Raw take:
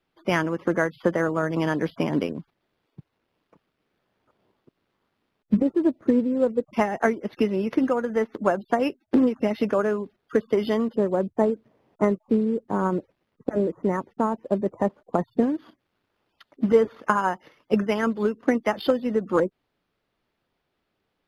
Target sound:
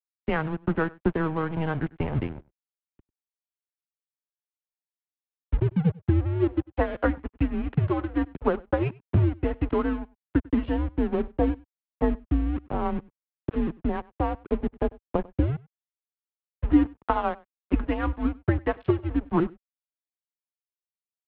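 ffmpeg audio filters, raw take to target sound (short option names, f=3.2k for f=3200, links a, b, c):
-af "highshelf=f=2.4k:g=-8.5,aresample=16000,aeval=exprs='sgn(val(0))*max(abs(val(0))-0.0168,0)':c=same,aresample=44100,aecho=1:1:97:0.0668,highpass=f=190:t=q:w=0.5412,highpass=f=190:t=q:w=1.307,lowpass=f=3.5k:t=q:w=0.5176,lowpass=f=3.5k:t=q:w=0.7071,lowpass=f=3.5k:t=q:w=1.932,afreqshift=-160"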